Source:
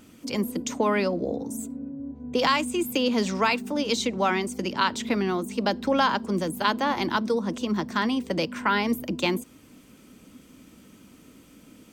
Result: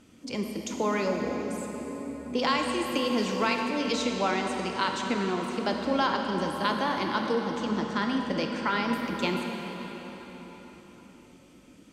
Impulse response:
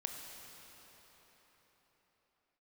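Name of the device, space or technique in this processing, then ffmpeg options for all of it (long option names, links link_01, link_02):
cathedral: -filter_complex "[0:a]lowpass=8700[link_01];[1:a]atrim=start_sample=2205[link_02];[link_01][link_02]afir=irnorm=-1:irlink=0,volume=-2dB"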